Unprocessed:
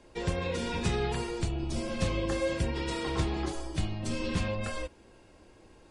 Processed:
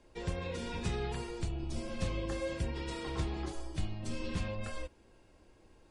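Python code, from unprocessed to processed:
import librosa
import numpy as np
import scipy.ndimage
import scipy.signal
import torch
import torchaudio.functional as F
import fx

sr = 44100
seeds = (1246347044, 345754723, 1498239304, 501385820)

y = fx.low_shelf(x, sr, hz=61.0, db=6.5)
y = y * librosa.db_to_amplitude(-7.0)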